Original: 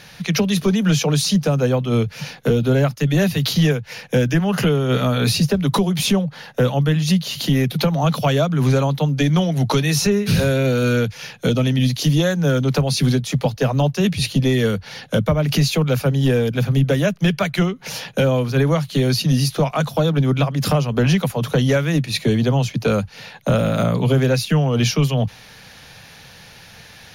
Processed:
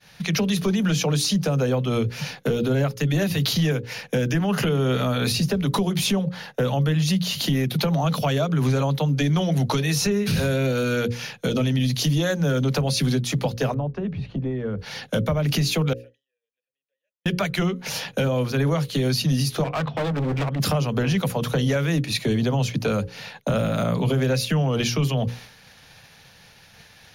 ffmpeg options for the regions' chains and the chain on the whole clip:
-filter_complex "[0:a]asettb=1/sr,asplit=3[a][b][c];[a]atrim=end=13.744[d];[b]atrim=start=13.74:end=14.79,asetpts=PTS-STARTPTS,afade=t=in:d=0.004:c=qsin,afade=t=out:st=1.046:d=0.004:c=qsin,acompressor=threshold=-24dB:ratio=4:attack=3.2:release=140:knee=1:detection=peak,lowpass=1.2k,aeval=exprs='val(0)+0.00316*(sin(2*PI*50*n/s)+sin(2*PI*2*50*n/s)/2+sin(2*PI*3*50*n/s)/3+sin(2*PI*4*50*n/s)/4+sin(2*PI*5*50*n/s)/5)':c=same[e];[c]atrim=start=14.786[f];[d][e]acrossfade=d=0.004:c1=hsin:c2=qsin[g];[g][f]acrossfade=d=0.004:c1=qsin:c2=hsin,asettb=1/sr,asplit=3[h][i][j];[h]atrim=end=15.934[k];[i]atrim=start=15.93:end=17.26,asetpts=PTS-STARTPTS,afade=t=in:d=0.004:c=qsin,afade=t=out:st=1.326:d=0.004:c=qsin,asplit=3[l][m][n];[l]bandpass=f=530:t=q:w=8,volume=0dB[o];[m]bandpass=f=1.84k:t=q:w=8,volume=-6dB[p];[n]bandpass=f=2.48k:t=q:w=8,volume=-9dB[q];[o][p][q]amix=inputs=3:normalize=0,aderivative,acompressor=threshold=-56dB:ratio=2:attack=3.2:release=140:knee=1:detection=peak[r];[j]atrim=start=17.256[s];[k][r]acrossfade=d=0.004:c1=hsin:c2=qsin[t];[t][s]acrossfade=d=0.004:c1=qsin:c2=hsin,asettb=1/sr,asplit=3[u][v][w];[u]atrim=end=19.644[x];[v]atrim=start=19.64:end=20.6,asetpts=PTS-STARTPTS,afade=t=in:d=0.004:c=qsin,afade=t=out:st=0.956:d=0.004:c=qsin,lowpass=f=3k:w=0.5412,lowpass=f=3k:w=1.3066,bandreject=f=50:t=h:w=6,bandreject=f=100:t=h:w=6,bandreject=f=150:t=h:w=6,asoftclip=type=hard:threshold=-22dB[y];[w]atrim=start=20.596[z];[x][y]acrossfade=d=0.004:c1=hsin:c2=qsin[aa];[aa][z]acrossfade=d=0.004:c1=qsin:c2=hsin,bandreject=f=60:t=h:w=6,bandreject=f=120:t=h:w=6,bandreject=f=180:t=h:w=6,bandreject=f=240:t=h:w=6,bandreject=f=300:t=h:w=6,bandreject=f=360:t=h:w=6,bandreject=f=420:t=h:w=6,bandreject=f=480:t=h:w=6,bandreject=f=540:t=h:w=6,agate=range=-33dB:threshold=-36dB:ratio=3:detection=peak,alimiter=limit=-14.5dB:level=0:latency=1:release=77"

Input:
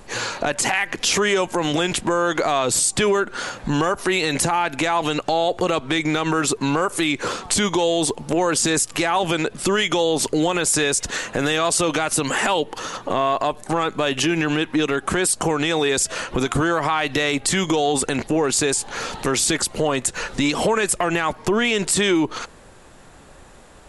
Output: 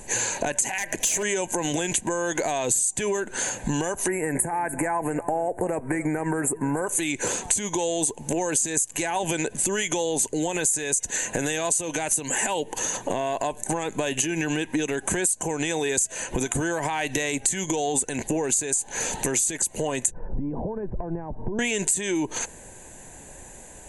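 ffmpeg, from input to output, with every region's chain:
-filter_complex "[0:a]asettb=1/sr,asplit=3[a][b][c];[a]atrim=end=0.784[d];[b]atrim=start=0.78:end=1.23,asetpts=PTS-STARTPTS,afade=t=in:d=0.004:c=qsin,afade=t=out:st=0.446:d=0.004:c=qsin,equalizer=f=630:t=o:w=0.2:g=13.5,aeval=exprs='0.188*(abs(mod(val(0)/0.188+3,4)-2)-1)':c=same[e];[c]atrim=start=1.226[f];[d][e]acrossfade=d=0.004:c1=hsin:c2=qsin[g];[g][f]acrossfade=d=0.004:c1=qsin:c2=hsin,asettb=1/sr,asplit=3[h][i][j];[h]atrim=end=4.084[k];[i]atrim=start=4.08:end=6.87,asetpts=PTS-STARTPTS,afade=t=in:d=0.004:c=qsin,afade=t=out:st=2.786:d=0.004:c=qsin,asuperstop=centerf=4300:order=8:qfactor=0.64,aecho=1:1:293:0.112,atrim=end_sample=123039[l];[j]atrim=start=6.866[m];[k][l]acrossfade=d=0.004:c1=hsin:c2=qsin[n];[n][m]acrossfade=d=0.004:c1=qsin:c2=hsin,asettb=1/sr,asplit=3[o][p][q];[o]atrim=end=20.114[r];[p]atrim=start=20.11:end=21.59,asetpts=PTS-STARTPTS,afade=t=in:d=0.004:c=qsin,afade=t=out:st=1.476:d=0.004:c=qsin,lowpass=f=1.1k:w=0.5412,lowpass=f=1.1k:w=1.3066,acompressor=threshold=-36dB:ratio=3:attack=3.2:release=140:knee=1:detection=peak,aemphasis=mode=reproduction:type=riaa[s];[q]atrim=start=21.586[t];[r][s]acrossfade=d=0.004:c1=hsin:c2=qsin[u];[u][t]acrossfade=d=0.004:c1=qsin:c2=hsin,superequalizer=10b=0.251:13b=0.631:14b=0.631:15b=3.98:16b=3.16,acompressor=threshold=-22dB:ratio=6"

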